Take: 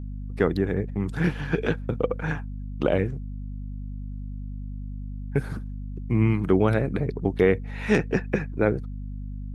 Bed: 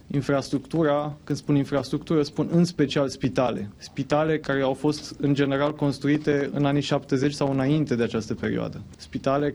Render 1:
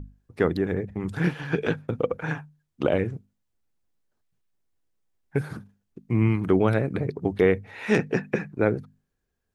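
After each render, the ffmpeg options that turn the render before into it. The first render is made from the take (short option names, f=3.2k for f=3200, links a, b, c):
-af "bandreject=f=50:t=h:w=6,bandreject=f=100:t=h:w=6,bandreject=f=150:t=h:w=6,bandreject=f=200:t=h:w=6,bandreject=f=250:t=h:w=6"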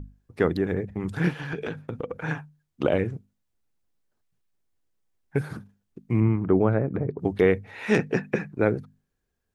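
-filter_complex "[0:a]asettb=1/sr,asplit=3[a][b][c];[a]atrim=end=1.404[d];[b]atrim=start=1.4:end=2.25,asetpts=PTS-STARTPTS,afade=t=in:d=0.004:c=qsin,afade=t=out:st=0.846:d=0.004:c=qsin,acompressor=threshold=-27dB:ratio=5:attack=3.2:release=140:knee=1:detection=peak[e];[c]atrim=start=2.246[f];[d][e]acrossfade=d=0.004:c1=hsin:c2=qsin[g];[g][f]acrossfade=d=0.004:c1=qsin:c2=hsin,asettb=1/sr,asplit=3[h][i][j];[h]atrim=end=6.204[k];[i]atrim=start=6.2:end=7.19,asetpts=PTS-STARTPTS,afade=t=in:d=0.004:c=qsin,afade=t=out:st=0.986:d=0.004:c=qsin,lowpass=1.3k[l];[j]atrim=start=7.186[m];[k][l]acrossfade=d=0.004:c1=hsin:c2=qsin[n];[n][m]acrossfade=d=0.004:c1=qsin:c2=hsin"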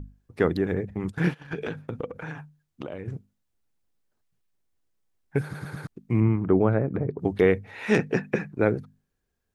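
-filter_complex "[0:a]asplit=3[a][b][c];[a]afade=t=out:st=1:d=0.02[d];[b]agate=range=-16dB:threshold=-33dB:ratio=16:release=100:detection=peak,afade=t=in:st=1:d=0.02,afade=t=out:st=1.51:d=0.02[e];[c]afade=t=in:st=1.51:d=0.02[f];[d][e][f]amix=inputs=3:normalize=0,asettb=1/sr,asplit=3[g][h][i];[g]atrim=end=2.084[j];[h]atrim=start=2.08:end=3.08,asetpts=PTS-STARTPTS,afade=t=in:d=0.004:c=qsin,afade=t=out:st=0.996:d=0.004:c=qsin,acompressor=threshold=-32dB:ratio=6:attack=3.2:release=140:knee=1:detection=peak[k];[i]atrim=start=3.076[l];[j][k]acrossfade=d=0.004:c1=hsin:c2=qsin[m];[m][l]acrossfade=d=0.004:c1=qsin:c2=hsin,asplit=5[n][o][p][q][r];[n]atrim=end=5.542[s];[o]atrim=start=5.428:end=5.542[t];[p]atrim=start=5.428:end=5.542[u];[q]atrim=start=5.428:end=5.542[v];[r]atrim=start=5.868[w];[s][t]acrossfade=d=0.004:c1=hsin:c2=hsin[x];[x][u]acrossfade=d=0.004:c1=hsin:c2=hsin[y];[y][v]acrossfade=d=0.004:c1=hsin:c2=hsin[z];[z][w]acrossfade=d=0.004:c1=hsin:c2=hsin"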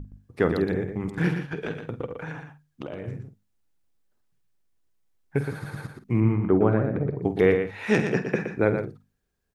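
-filter_complex "[0:a]asplit=2[a][b];[b]adelay=49,volume=-12dB[c];[a][c]amix=inputs=2:normalize=0,aecho=1:1:119:0.422"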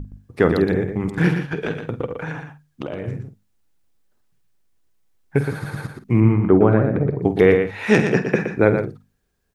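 -af "volume=6.5dB,alimiter=limit=-1dB:level=0:latency=1"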